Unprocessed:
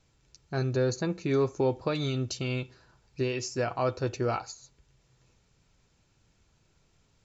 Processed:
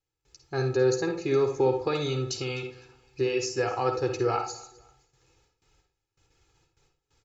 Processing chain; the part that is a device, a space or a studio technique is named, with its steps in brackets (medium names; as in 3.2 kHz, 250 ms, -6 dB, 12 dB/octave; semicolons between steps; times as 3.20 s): gate with hold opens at -56 dBFS; bass shelf 130 Hz -6 dB; microphone above a desk (comb 2.4 ms, depth 79%; reverberation RT60 0.30 s, pre-delay 48 ms, DRR 5 dB); feedback delay 255 ms, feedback 31%, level -22 dB